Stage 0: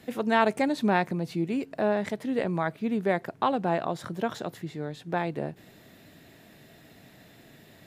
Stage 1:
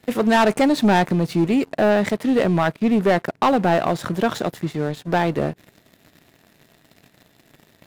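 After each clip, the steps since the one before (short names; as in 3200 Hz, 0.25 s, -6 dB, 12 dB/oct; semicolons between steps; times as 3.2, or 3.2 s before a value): sample leveller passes 3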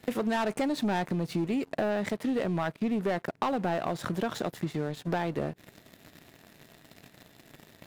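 compressor 4:1, threshold -29 dBFS, peak gain reduction 13.5 dB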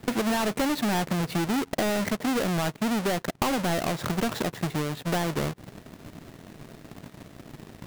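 half-waves squared off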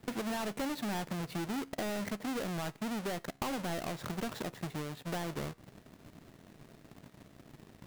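resonator 68 Hz, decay 0.47 s, harmonics all, mix 30%; gain -8 dB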